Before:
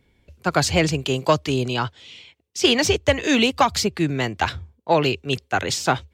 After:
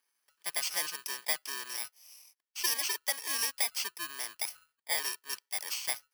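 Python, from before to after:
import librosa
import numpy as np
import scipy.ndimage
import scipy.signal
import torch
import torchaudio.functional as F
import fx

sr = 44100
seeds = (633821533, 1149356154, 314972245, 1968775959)

y = fx.bit_reversed(x, sr, seeds[0], block=32)
y = scipy.signal.sosfilt(scipy.signal.butter(2, 1400.0, 'highpass', fs=sr, output='sos'), y)
y = fx.high_shelf(y, sr, hz=10000.0, db=-8.5)
y = y * librosa.db_to_amplitude(-7.0)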